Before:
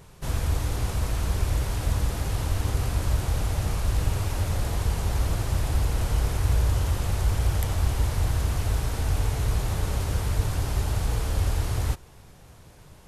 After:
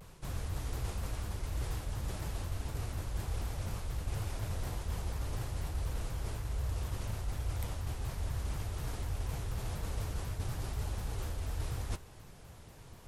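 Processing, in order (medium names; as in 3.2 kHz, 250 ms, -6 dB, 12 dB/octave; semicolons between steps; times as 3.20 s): reverse; compression 6:1, threshold -30 dBFS, peak gain reduction 12.5 dB; reverse; flange 1.2 Hz, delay 1.4 ms, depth 8.9 ms, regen -62%; vibrato with a chosen wave saw down 4.1 Hz, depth 250 cents; trim +1 dB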